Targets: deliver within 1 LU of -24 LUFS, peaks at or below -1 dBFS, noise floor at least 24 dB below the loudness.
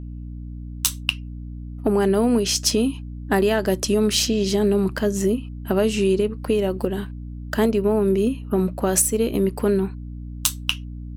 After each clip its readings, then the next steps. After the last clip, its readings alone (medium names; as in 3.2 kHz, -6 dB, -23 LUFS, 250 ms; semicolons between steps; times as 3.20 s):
hum 60 Hz; highest harmonic 300 Hz; hum level -31 dBFS; loudness -21.5 LUFS; peak level -3.0 dBFS; loudness target -24.0 LUFS
-> de-hum 60 Hz, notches 5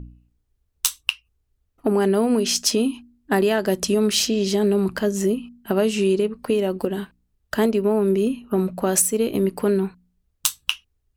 hum not found; loudness -21.5 LUFS; peak level -3.5 dBFS; loudness target -24.0 LUFS
-> trim -2.5 dB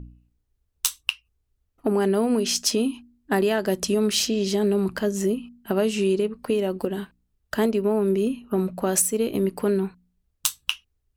loudness -24.0 LUFS; peak level -6.0 dBFS; noise floor -74 dBFS